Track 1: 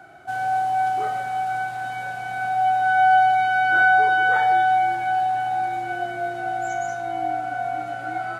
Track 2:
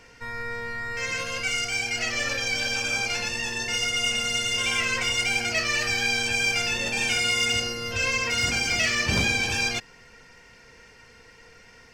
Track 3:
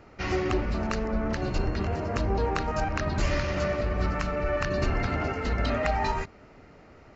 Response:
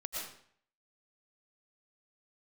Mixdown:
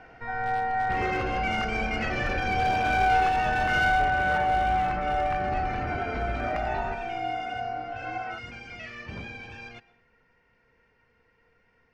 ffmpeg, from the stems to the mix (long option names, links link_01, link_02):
-filter_complex "[0:a]volume=-6dB[link_01];[1:a]volume=-1dB,afade=type=out:start_time=3.76:duration=0.25:silence=0.237137,asplit=2[link_02][link_03];[link_03]volume=-20dB[link_04];[2:a]acompressor=threshold=-29dB:ratio=3,adelay=700,volume=-3.5dB,asplit=2[link_05][link_06];[link_06]volume=-5dB[link_07];[3:a]atrim=start_sample=2205[link_08];[link_04][link_07]amix=inputs=2:normalize=0[link_09];[link_09][link_08]afir=irnorm=-1:irlink=0[link_10];[link_01][link_02][link_05][link_10]amix=inputs=4:normalize=0,lowpass=2100,aeval=exprs='clip(val(0),-1,0.0891)':channel_layout=same"